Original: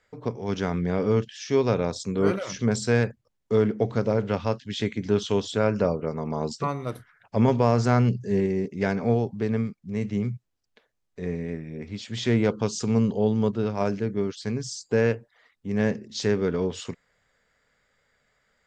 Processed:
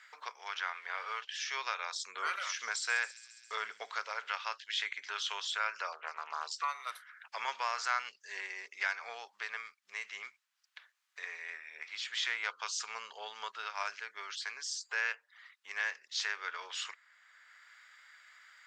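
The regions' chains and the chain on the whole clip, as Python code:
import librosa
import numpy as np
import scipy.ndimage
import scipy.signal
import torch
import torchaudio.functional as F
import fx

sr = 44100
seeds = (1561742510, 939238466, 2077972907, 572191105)

y = fx.chain(x, sr, fx.law_mismatch(coded='mu'),
    fx.bandpass_edges(low_hz=360.0, high_hz=5900.0),
    fx.high_shelf(hz=4300.0, db=-10.0), at=(0.48, 1.28))
y = fx.chain(y, sr, fx.low_shelf(hz=350.0, db=7.5),
    fx.echo_wet_highpass(ms=136, feedback_pct=59, hz=5400.0, wet_db=-9.0), at=(2.05, 4.03))
y = fx.chain(y, sr, fx.lowpass(hz=6600.0, slope=12),
    fx.doppler_dist(depth_ms=0.27), at=(5.92, 6.47))
y = scipy.signal.sosfilt(scipy.signal.butter(4, 1200.0, 'highpass', fs=sr, output='sos'), y)
y = fx.high_shelf(y, sr, hz=5800.0, db=-8.5)
y = fx.band_squash(y, sr, depth_pct=40)
y = y * librosa.db_to_amplitude(2.5)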